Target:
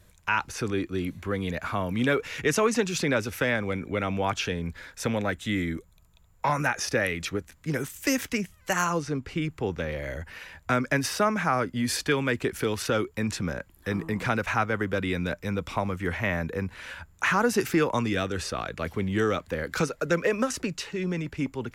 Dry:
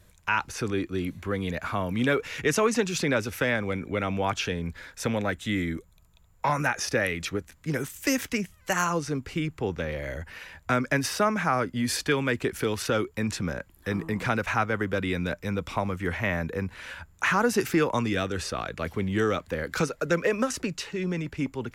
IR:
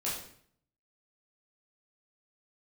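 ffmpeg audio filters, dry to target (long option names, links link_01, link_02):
-filter_complex "[0:a]asettb=1/sr,asplit=3[link_01][link_02][link_03];[link_01]atrim=end=9.024[link_04];[link_02]atrim=start=9.02:end=9.42,asetpts=PTS-STARTPTS,afade=type=in:duration=0.004:curve=qsin,afade=type=out:start_time=0.396:duration=0.004:curve=qsin,highshelf=frequency=7800:gain=-9.5[link_05];[link_03]atrim=start=9.416[link_06];[link_04][link_05]acrossfade=duration=0.004:curve1=hsin:curve2=qsin[link_07];[link_07][link_06]acrossfade=duration=0.004:curve1=qsin:curve2=hsin"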